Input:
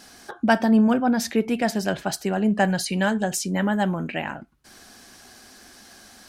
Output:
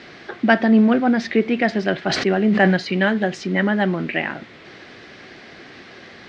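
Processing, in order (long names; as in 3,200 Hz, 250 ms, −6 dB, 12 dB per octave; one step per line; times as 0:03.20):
background noise pink −45 dBFS
loudspeaker in its box 140–4,200 Hz, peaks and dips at 360 Hz +6 dB, 920 Hz −6 dB, 2,000 Hz +8 dB
0:02.00–0:02.77: level that may fall only so fast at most 35 dB per second
level +3.5 dB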